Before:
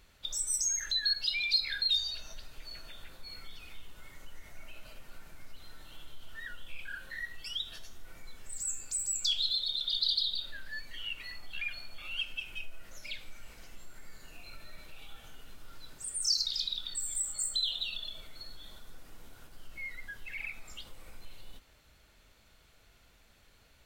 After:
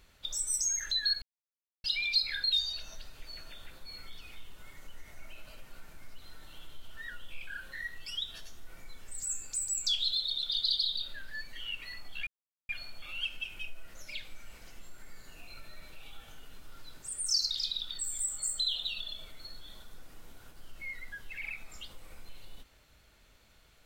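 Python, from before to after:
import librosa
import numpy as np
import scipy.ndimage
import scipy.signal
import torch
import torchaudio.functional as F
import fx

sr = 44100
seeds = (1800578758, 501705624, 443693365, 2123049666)

y = fx.edit(x, sr, fx.insert_silence(at_s=1.22, length_s=0.62),
    fx.insert_silence(at_s=11.65, length_s=0.42), tone=tone)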